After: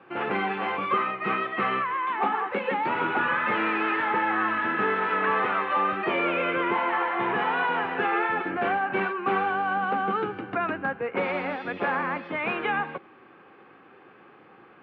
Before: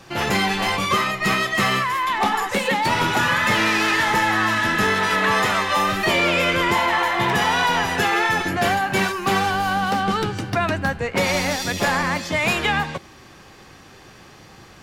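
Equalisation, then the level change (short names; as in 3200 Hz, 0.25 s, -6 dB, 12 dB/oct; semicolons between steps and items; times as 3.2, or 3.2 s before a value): air absorption 190 m; speaker cabinet 340–2300 Hz, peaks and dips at 630 Hz -8 dB, 960 Hz -5 dB, 1900 Hz -8 dB; 0.0 dB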